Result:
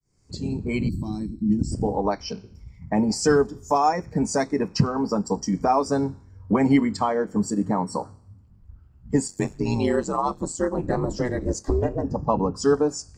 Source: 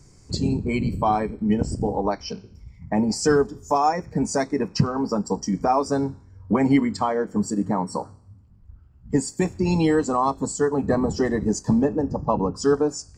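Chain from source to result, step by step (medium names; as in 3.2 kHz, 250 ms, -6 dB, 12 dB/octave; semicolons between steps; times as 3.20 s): fade-in on the opening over 0.89 s; 0.89–1.72 s: time-frequency box 370–3700 Hz -23 dB; 9.27–12.03 s: ring modulator 45 Hz -> 180 Hz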